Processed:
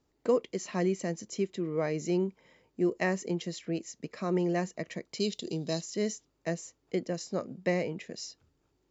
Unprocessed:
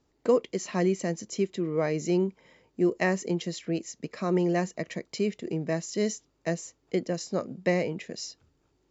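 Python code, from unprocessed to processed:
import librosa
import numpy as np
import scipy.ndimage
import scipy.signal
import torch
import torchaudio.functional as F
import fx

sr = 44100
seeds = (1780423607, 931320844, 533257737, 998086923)

y = fx.high_shelf_res(x, sr, hz=2800.0, db=10.5, q=3.0, at=(5.2, 5.81))
y = y * 10.0 ** (-3.5 / 20.0)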